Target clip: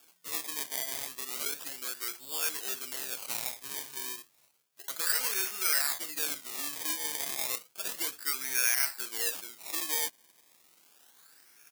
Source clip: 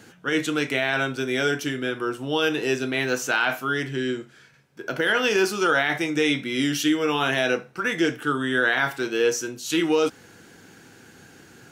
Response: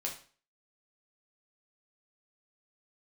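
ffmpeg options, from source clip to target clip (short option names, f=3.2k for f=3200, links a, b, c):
-filter_complex "[0:a]acrusher=samples=22:mix=1:aa=0.000001:lfo=1:lforange=22:lforate=0.32,asplit=2[a][b];[b]asetrate=29433,aresample=44100,atempo=1.49831,volume=-17dB[c];[a][c]amix=inputs=2:normalize=0,aderivative"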